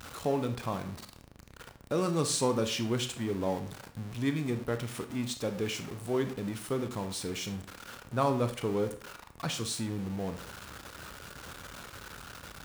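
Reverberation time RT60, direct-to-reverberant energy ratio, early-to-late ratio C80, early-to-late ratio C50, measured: 0.50 s, 7.5 dB, 15.0 dB, 11.0 dB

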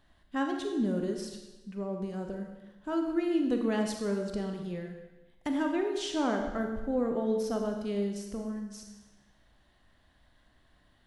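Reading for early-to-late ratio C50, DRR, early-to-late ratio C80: 5.0 dB, 3.0 dB, 6.5 dB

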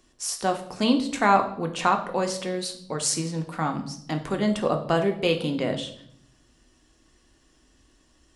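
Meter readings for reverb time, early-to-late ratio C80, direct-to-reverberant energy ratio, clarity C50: 0.65 s, 14.5 dB, 4.0 dB, 11.0 dB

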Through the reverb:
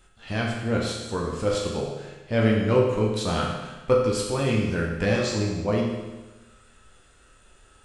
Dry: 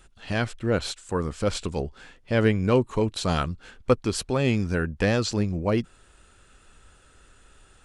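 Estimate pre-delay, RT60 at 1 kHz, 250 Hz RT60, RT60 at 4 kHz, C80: 10 ms, 1.2 s, 1.2 s, 1.2 s, 4.5 dB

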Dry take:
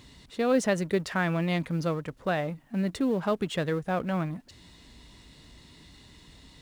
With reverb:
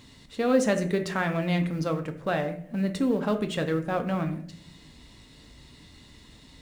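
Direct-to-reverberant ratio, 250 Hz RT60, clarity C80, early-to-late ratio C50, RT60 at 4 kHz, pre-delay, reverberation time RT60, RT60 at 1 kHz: 5.5 dB, 0.85 s, 15.5 dB, 11.5 dB, 0.35 s, 4 ms, 0.60 s, 0.50 s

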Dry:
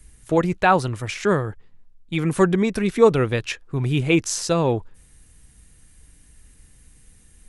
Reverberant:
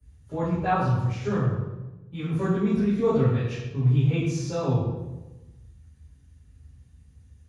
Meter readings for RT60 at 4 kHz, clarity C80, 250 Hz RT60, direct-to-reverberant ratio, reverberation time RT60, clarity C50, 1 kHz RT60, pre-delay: 0.75 s, 4.0 dB, 1.3 s, −14.5 dB, 1.1 s, 0.0 dB, 1.0 s, 3 ms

